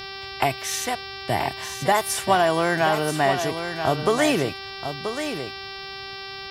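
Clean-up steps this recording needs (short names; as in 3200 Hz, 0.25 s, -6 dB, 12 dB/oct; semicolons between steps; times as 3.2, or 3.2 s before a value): clip repair -8 dBFS; de-hum 389.8 Hz, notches 14; inverse comb 0.981 s -8.5 dB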